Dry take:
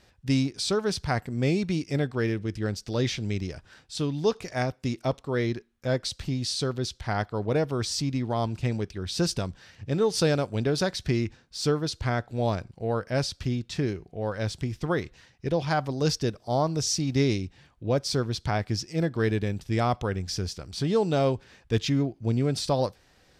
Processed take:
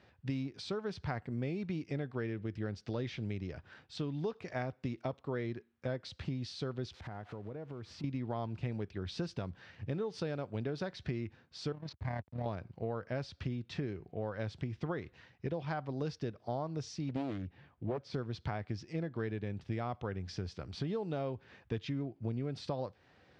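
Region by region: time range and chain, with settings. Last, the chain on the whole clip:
6.92–8.04 switching spikes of -25 dBFS + LPF 1200 Hz 6 dB/oct + compressor 16:1, threshold -37 dBFS
11.72–12.46 fixed phaser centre 2000 Hz, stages 8 + AM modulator 36 Hz, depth 30% + backlash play -36 dBFS
17.09–18.14 LPF 2700 Hz 6 dB/oct + Doppler distortion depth 0.96 ms
whole clip: HPF 72 Hz 24 dB/oct; compressor 6:1, threshold -32 dBFS; LPF 2900 Hz 12 dB/oct; gain -2 dB

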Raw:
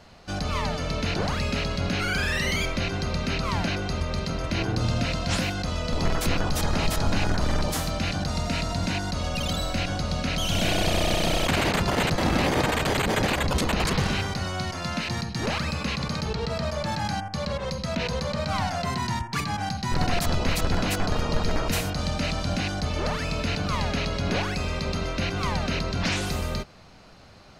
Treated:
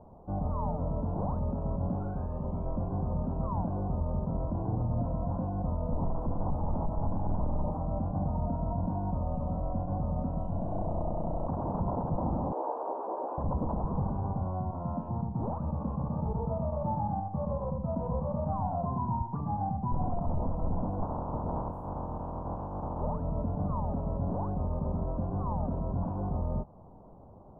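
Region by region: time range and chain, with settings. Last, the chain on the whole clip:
12.52–13.38 steep high-pass 340 Hz + doubler 15 ms -3 dB
21.02–23 spectral limiter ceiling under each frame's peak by 27 dB + bell 62 Hz +7.5 dB 2.8 oct
whole clip: limiter -19.5 dBFS; elliptic low-pass 980 Hz, stop band 50 dB; dynamic EQ 390 Hz, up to -8 dB, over -49 dBFS, Q 1.9

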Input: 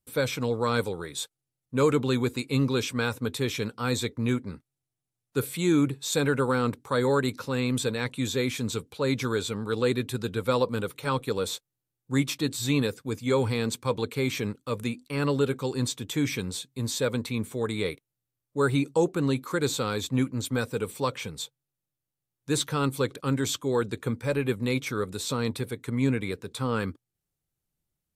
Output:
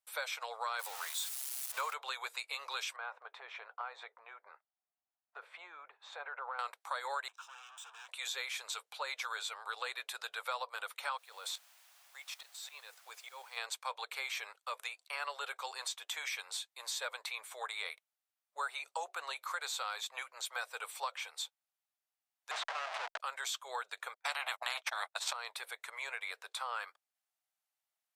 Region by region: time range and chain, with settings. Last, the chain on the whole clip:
0.79–1.94 switching spikes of -24.5 dBFS + bell 1000 Hz +4 dB 0.84 oct
2.96–6.59 LPF 1400 Hz + compressor 4:1, threshold -30 dBFS
7.28–8.09 tube stage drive 42 dB, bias 0.5 + fixed phaser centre 3000 Hz, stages 8
11.17–13.56 level quantiser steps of 12 dB + auto swell 0.395 s + added noise white -60 dBFS
22.51–23.2 Schmitt trigger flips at -36.5 dBFS + air absorption 120 m
24.14–25.33 gate -33 dBFS, range -58 dB + tilt -3.5 dB/oct + spectral compressor 4:1
whole clip: elliptic high-pass 670 Hz, stop band 60 dB; high shelf 5900 Hz -6 dB; compressor 3:1, threshold -38 dBFS; gain +1 dB

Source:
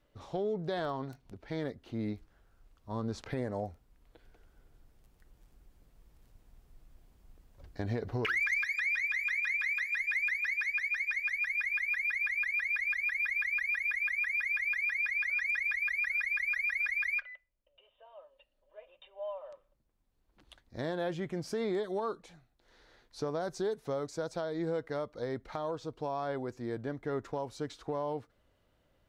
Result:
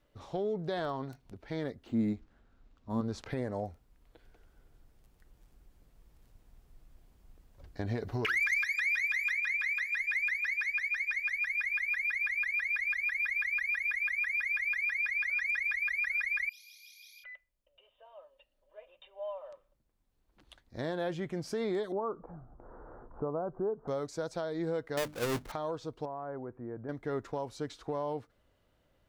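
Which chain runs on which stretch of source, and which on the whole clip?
1.87–3.01 bell 240 Hz +10.5 dB 0.42 oct + decimation joined by straight lines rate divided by 4×
7.95–9.33 high shelf 4500 Hz +6 dB + notch 500 Hz, Q 10
16.49–17.24 Chebyshev high-pass 2800 Hz, order 8 + flutter echo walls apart 4.9 m, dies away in 0.65 s
21.92–23.88 steep low-pass 1300 Hz 48 dB/oct + upward compressor, threshold -35 dBFS
24.97–25.52 half-waves squared off + notches 50/100/150/200/250/300 Hz
26.05–26.89 LPF 1500 Hz 24 dB/oct + compressor 1.5:1, threshold -44 dBFS
whole clip: dry

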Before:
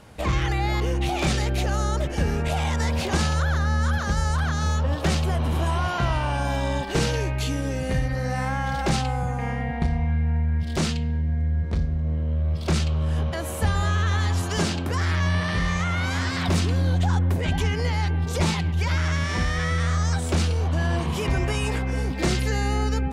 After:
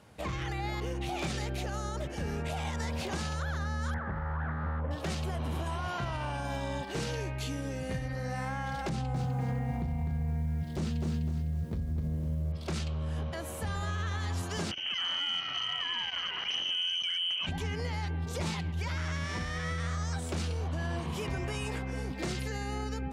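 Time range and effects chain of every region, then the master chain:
3.94–4.91 LPF 1900 Hz 24 dB/oct + Doppler distortion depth 0.42 ms
8.89–12.52 tilt shelf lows +5.5 dB, about 630 Hz + lo-fi delay 0.252 s, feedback 35%, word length 8-bit, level -6 dB
14.71–17.47 inverted band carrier 3100 Hz + core saturation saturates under 1300 Hz
whole clip: limiter -15.5 dBFS; HPF 71 Hz; gain -8.5 dB

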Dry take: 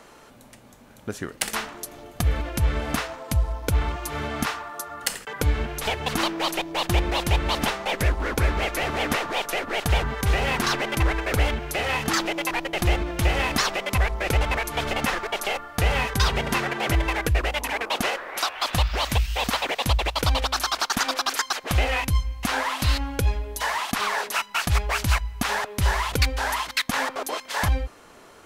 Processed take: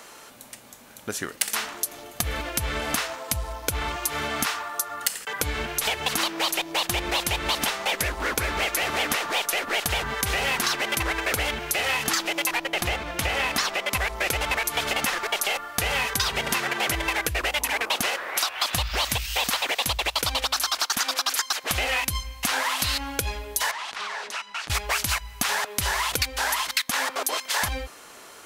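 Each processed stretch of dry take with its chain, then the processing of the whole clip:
12.58–13.95 high shelf 4200 Hz -6.5 dB + notches 50/100/150/200/250/300/350/400 Hz
17.56–19.16 HPF 45 Hz + low shelf 140 Hz +9 dB
23.71–24.7 compressor 3:1, threshold -34 dBFS + air absorption 90 m + core saturation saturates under 990 Hz
whole clip: tilt +2.5 dB/oct; compressor, threshold -24 dBFS; gain +2.5 dB

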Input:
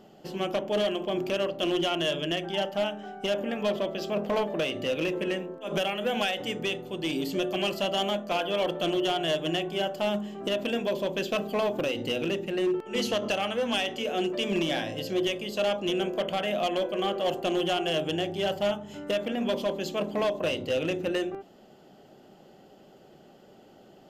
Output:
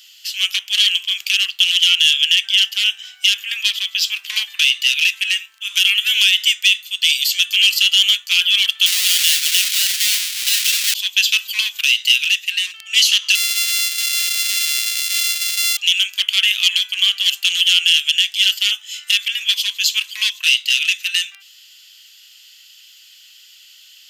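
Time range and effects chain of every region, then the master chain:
8.86–10.94 half-waves squared off + HPF 53 Hz
13.35–15.77 sample sorter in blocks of 64 samples + bell 600 Hz +8.5 dB 0.25 oct
whole clip: inverse Chebyshev high-pass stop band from 610 Hz, stop band 70 dB; maximiser +25 dB; gain -1 dB

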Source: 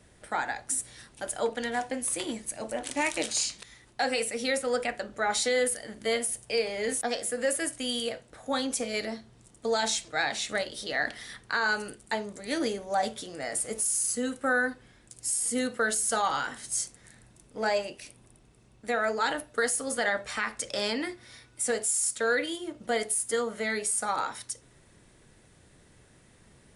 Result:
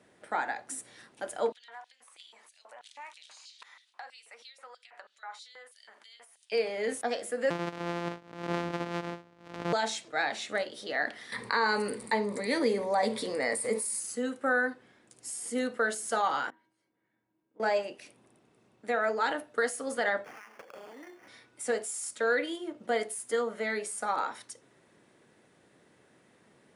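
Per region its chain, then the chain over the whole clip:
1.52–6.52 compressor, threshold -42 dBFS + LFO high-pass square 3.1 Hz 990–3700 Hz + high shelf 8400 Hz -9 dB
7.5–9.73 sample sorter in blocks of 256 samples + air absorption 71 m + backwards sustainer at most 94 dB/s
11.32–14 ripple EQ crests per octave 0.94, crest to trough 10 dB + fast leveller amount 50%
16.5–17.6 compressor 1.5:1, threshold -36 dBFS + air absorption 440 m + resonator 320 Hz, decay 0.36 s, harmonics odd, mix 90%
20.24–21.28 HPF 270 Hz + sample-rate reducer 3900 Hz + compressor 16:1, threshold -42 dBFS
whole clip: HPF 230 Hz 12 dB/oct; high shelf 3900 Hz -11.5 dB

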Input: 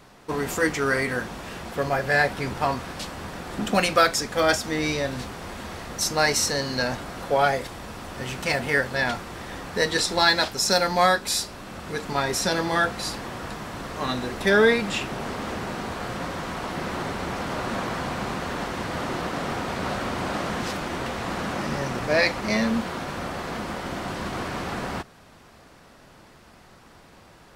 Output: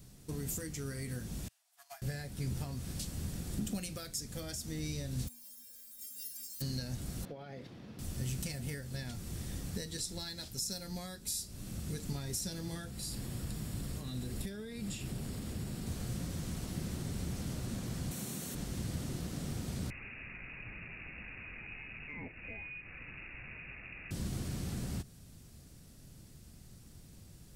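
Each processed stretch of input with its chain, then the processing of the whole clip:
1.48–2.02 brick-wall FIR high-pass 610 Hz + upward expander 2.5:1, over -39 dBFS
5.27–6.6 spectral whitening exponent 0.1 + compressor 2.5:1, threshold -28 dBFS + metallic resonator 240 Hz, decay 0.76 s, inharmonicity 0.008
7.25–7.99 HPF 210 Hz + air absorption 290 m + compressor, threshold -23 dBFS
12.9–15.87 notch 6100 Hz, Q 7.7 + compressor, threshold -29 dBFS
18.11–18.55 HPF 180 Hz + high shelf 6800 Hz +11.5 dB + notch 4900 Hz, Q 10
19.9–24.11 inverted band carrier 2700 Hz + notch 1400 Hz, Q 29
whole clip: high shelf 5300 Hz +10 dB; compressor 4:1, threshold -29 dBFS; EQ curve 130 Hz 0 dB, 1000 Hz -26 dB, 8400 Hz -8 dB; gain +2.5 dB

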